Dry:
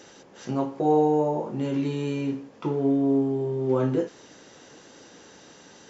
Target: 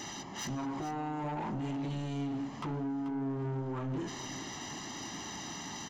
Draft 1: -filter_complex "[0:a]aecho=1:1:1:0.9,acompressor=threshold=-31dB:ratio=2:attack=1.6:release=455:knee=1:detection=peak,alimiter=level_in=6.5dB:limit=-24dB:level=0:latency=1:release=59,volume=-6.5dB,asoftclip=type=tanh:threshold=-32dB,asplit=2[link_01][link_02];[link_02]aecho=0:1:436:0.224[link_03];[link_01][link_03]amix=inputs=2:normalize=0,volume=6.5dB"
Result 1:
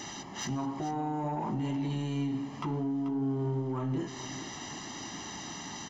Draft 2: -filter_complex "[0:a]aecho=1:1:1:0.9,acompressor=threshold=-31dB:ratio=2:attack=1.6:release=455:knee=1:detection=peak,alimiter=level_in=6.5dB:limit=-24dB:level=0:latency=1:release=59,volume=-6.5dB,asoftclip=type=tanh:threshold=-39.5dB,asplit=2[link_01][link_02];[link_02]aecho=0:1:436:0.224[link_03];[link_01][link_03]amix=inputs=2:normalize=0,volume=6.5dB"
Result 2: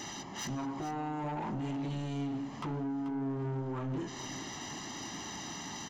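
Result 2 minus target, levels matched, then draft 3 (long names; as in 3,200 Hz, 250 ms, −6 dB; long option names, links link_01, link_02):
downward compressor: peak gain reduction +4 dB
-filter_complex "[0:a]aecho=1:1:1:0.9,acompressor=threshold=-23.5dB:ratio=2:attack=1.6:release=455:knee=1:detection=peak,alimiter=level_in=6.5dB:limit=-24dB:level=0:latency=1:release=59,volume=-6.5dB,asoftclip=type=tanh:threshold=-39.5dB,asplit=2[link_01][link_02];[link_02]aecho=0:1:436:0.224[link_03];[link_01][link_03]amix=inputs=2:normalize=0,volume=6.5dB"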